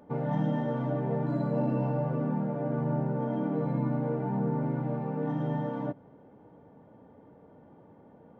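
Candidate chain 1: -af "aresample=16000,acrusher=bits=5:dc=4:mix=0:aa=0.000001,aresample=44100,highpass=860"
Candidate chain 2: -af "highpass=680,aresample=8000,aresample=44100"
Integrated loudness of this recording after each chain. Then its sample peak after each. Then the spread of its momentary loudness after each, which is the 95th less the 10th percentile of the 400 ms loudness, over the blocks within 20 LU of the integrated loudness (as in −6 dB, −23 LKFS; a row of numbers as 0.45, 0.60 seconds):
−37.0, −40.5 LKFS; −17.5, −26.5 dBFS; 7, 3 LU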